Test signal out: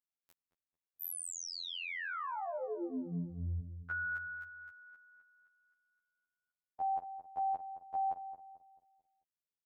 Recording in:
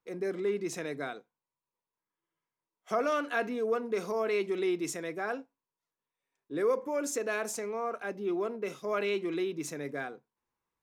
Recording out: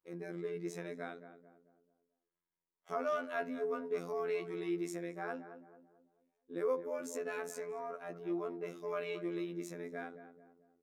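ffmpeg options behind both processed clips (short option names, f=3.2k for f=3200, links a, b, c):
-filter_complex "[0:a]equalizer=f=6k:t=o:w=2.8:g=-5.5,afftfilt=real='hypot(re,im)*cos(PI*b)':imag='0':win_size=2048:overlap=0.75,asplit=2[a][b];[b]adelay=220,lowpass=f=1.1k:p=1,volume=-10dB,asplit=2[c][d];[d]adelay=220,lowpass=f=1.1k:p=1,volume=0.45,asplit=2[e][f];[f]adelay=220,lowpass=f=1.1k:p=1,volume=0.45,asplit=2[g][h];[h]adelay=220,lowpass=f=1.1k:p=1,volume=0.45,asplit=2[i][j];[j]adelay=220,lowpass=f=1.1k:p=1,volume=0.45[k];[c][e][g][i][k]amix=inputs=5:normalize=0[l];[a][l]amix=inputs=2:normalize=0,volume=-3dB"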